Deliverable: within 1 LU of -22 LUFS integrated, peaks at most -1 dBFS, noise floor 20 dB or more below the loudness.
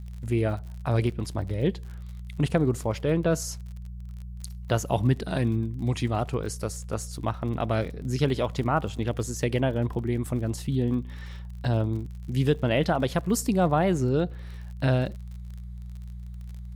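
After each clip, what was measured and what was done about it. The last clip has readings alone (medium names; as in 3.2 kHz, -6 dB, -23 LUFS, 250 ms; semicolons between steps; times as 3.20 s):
tick rate 48 per s; hum 60 Hz; highest harmonic 180 Hz; hum level -36 dBFS; loudness -27.0 LUFS; peak level -9.5 dBFS; loudness target -22.0 LUFS
-> de-click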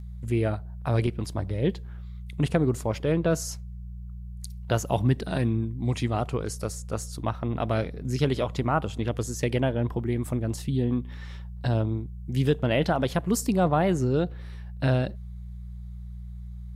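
tick rate 0.060 per s; hum 60 Hz; highest harmonic 180 Hz; hum level -36 dBFS
-> de-hum 60 Hz, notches 3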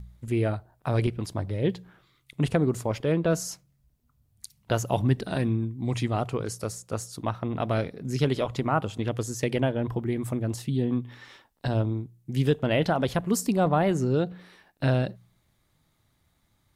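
hum not found; loudness -27.5 LUFS; peak level -10.0 dBFS; loudness target -22.0 LUFS
-> trim +5.5 dB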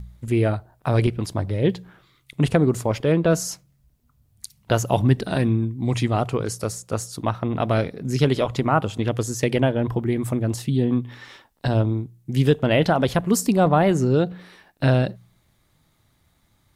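loudness -22.0 LUFS; peak level -4.5 dBFS; noise floor -64 dBFS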